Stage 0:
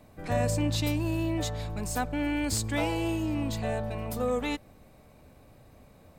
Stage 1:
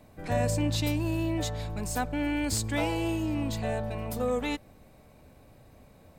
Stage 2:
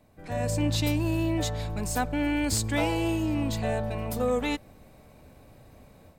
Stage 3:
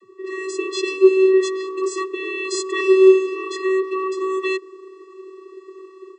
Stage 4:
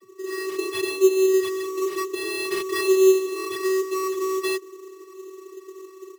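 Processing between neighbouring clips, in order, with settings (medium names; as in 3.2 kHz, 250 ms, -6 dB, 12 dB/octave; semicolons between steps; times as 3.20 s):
band-stop 1.2 kHz, Q 23
level rider gain up to 8.5 dB; trim -6 dB
bass shelf 270 Hz +7.5 dB; vocoder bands 32, square 379 Hz; trim +6.5 dB
in parallel at -1 dB: compression, threshold -23 dBFS, peak gain reduction 15.5 dB; on the sum: sample-rate reducer 6.8 kHz, jitter 0%; trim -6.5 dB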